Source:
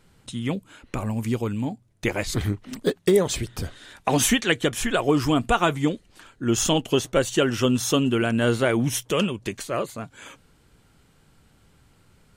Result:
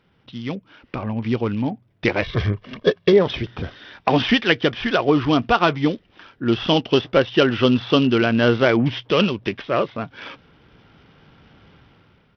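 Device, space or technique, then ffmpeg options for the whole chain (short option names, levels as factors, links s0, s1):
Bluetooth headset: -filter_complex "[0:a]asettb=1/sr,asplit=3[s0][s1][s2];[s0]atrim=end=2.224[s3];[s1]atrim=start=2.22:end=3.13,asetpts=PTS-STARTPTS,afade=t=in:d=0.004:c=qsin,afade=t=out:st=0.906:d=0.004:c=qsin,aecho=1:1:1.8:0.6,atrim=end_sample=40131[s4];[s2]atrim=start=3.126[s5];[s3][s4]acrossfade=d=0.004:c1=hsin:c2=qsin[s6];[s6][s5]acrossfade=d=0.004:c1=qsin:c2=hsin,highpass=f=110:p=1,dynaudnorm=f=730:g=3:m=4.22,aresample=8000,aresample=44100,volume=0.891" -ar 44100 -c:a sbc -b:a 64k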